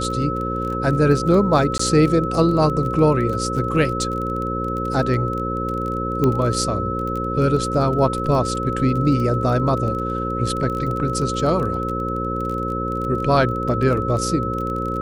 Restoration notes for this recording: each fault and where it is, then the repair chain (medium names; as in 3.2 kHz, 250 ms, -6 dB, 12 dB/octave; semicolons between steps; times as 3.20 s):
buzz 60 Hz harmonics 9 -26 dBFS
crackle 22 per s -26 dBFS
whine 1.3 kHz -25 dBFS
1.78–1.79 s: dropout 14 ms
6.24 s: pop -9 dBFS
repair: de-click; de-hum 60 Hz, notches 9; band-stop 1.3 kHz, Q 30; interpolate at 1.78 s, 14 ms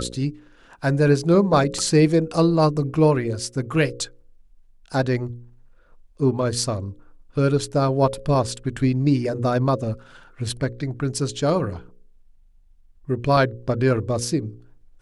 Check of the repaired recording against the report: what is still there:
nothing left